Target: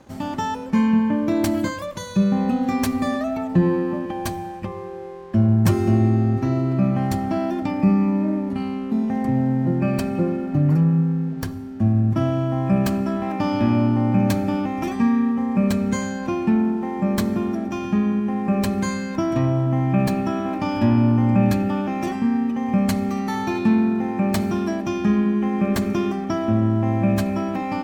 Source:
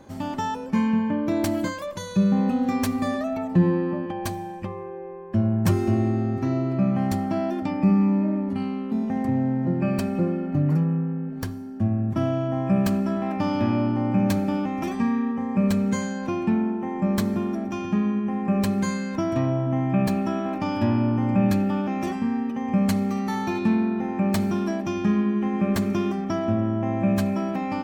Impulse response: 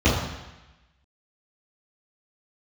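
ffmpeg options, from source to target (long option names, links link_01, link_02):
-filter_complex "[0:a]aeval=exprs='sgn(val(0))*max(abs(val(0))-0.002,0)':channel_layout=same,asplit=2[link_01][link_02];[1:a]atrim=start_sample=2205,lowshelf=frequency=64:gain=10.5[link_03];[link_02][link_03]afir=irnorm=-1:irlink=0,volume=-38dB[link_04];[link_01][link_04]amix=inputs=2:normalize=0,volume=3dB"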